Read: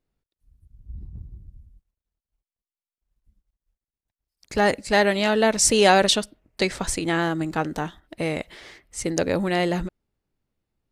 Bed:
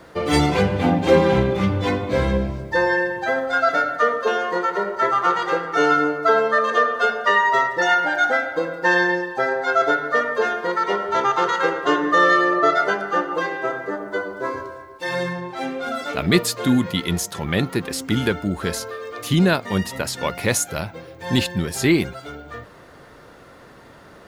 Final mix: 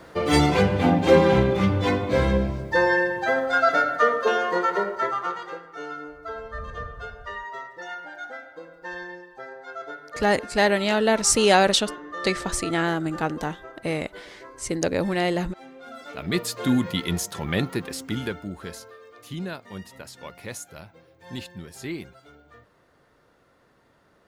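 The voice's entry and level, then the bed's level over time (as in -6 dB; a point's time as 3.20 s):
5.65 s, -1.0 dB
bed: 4.78 s -1 dB
5.74 s -18.5 dB
15.65 s -18.5 dB
16.70 s -3.5 dB
17.60 s -3.5 dB
19.13 s -16 dB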